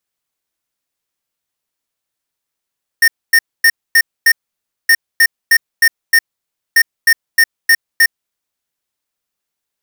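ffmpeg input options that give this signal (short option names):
-f lavfi -i "aevalsrc='0.398*(2*lt(mod(1830*t,1),0.5)-1)*clip(min(mod(mod(t,1.87),0.31),0.06-mod(mod(t,1.87),0.31))/0.005,0,1)*lt(mod(t,1.87),1.55)':d=5.61:s=44100"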